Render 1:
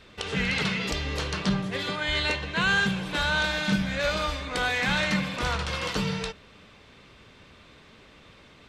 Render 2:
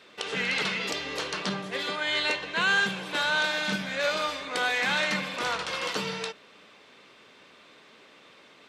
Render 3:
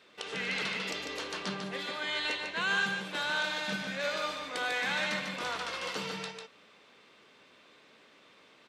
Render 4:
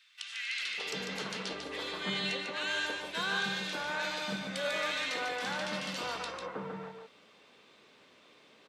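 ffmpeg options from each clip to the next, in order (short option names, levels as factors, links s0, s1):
-af "highpass=300"
-af "aecho=1:1:147:0.531,volume=0.473"
-filter_complex "[0:a]acrossover=split=1600[s0][s1];[s0]adelay=600[s2];[s2][s1]amix=inputs=2:normalize=0"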